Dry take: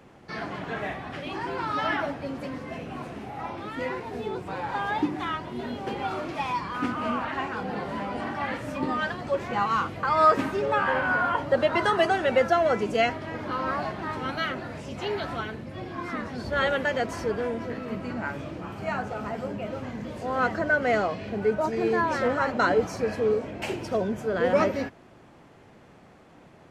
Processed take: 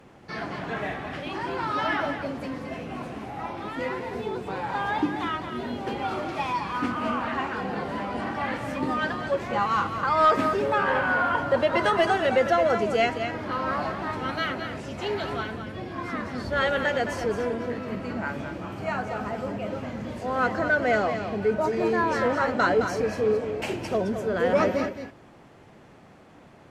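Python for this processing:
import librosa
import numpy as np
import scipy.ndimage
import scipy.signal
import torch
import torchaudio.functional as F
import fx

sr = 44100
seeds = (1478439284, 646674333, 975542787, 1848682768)

p1 = x + 10.0 ** (-8.5 / 20.0) * np.pad(x, (int(215 * sr / 1000.0), 0))[:len(x)]
p2 = fx.fold_sine(p1, sr, drive_db=4, ceiling_db=-8.0)
p3 = p1 + (p2 * 10.0 ** (-5.5 / 20.0))
y = p3 * 10.0 ** (-6.5 / 20.0)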